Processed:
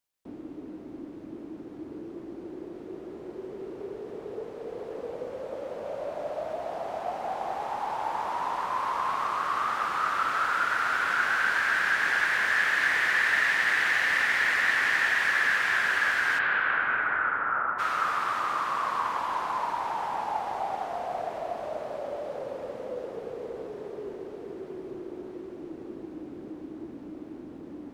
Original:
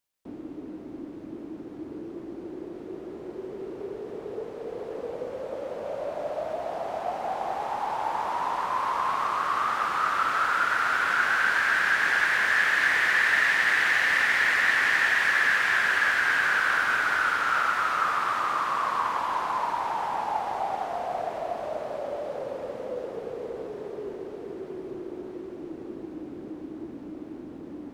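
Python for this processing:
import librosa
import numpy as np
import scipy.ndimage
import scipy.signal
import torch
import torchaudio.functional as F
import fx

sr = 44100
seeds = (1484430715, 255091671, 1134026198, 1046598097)

y = fx.lowpass(x, sr, hz=fx.line((16.38, 3700.0), (17.78, 1400.0)), slope=24, at=(16.38, 17.78), fade=0.02)
y = y * librosa.db_to_amplitude(-2.0)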